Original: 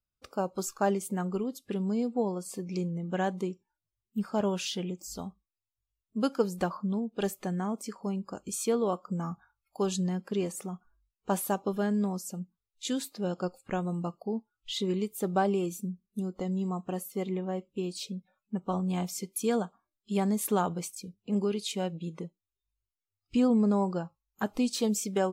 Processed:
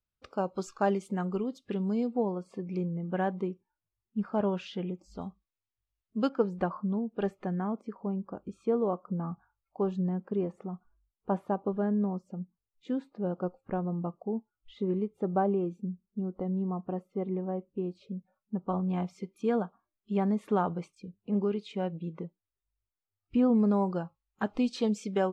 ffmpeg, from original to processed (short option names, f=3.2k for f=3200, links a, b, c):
-af "asetnsamples=n=441:p=0,asendcmd='2.16 lowpass f 2000;5.21 lowpass f 3900;6.29 lowpass f 1800;7.81 lowpass f 1100;18.68 lowpass f 1900;23.55 lowpass f 3300',lowpass=3.9k"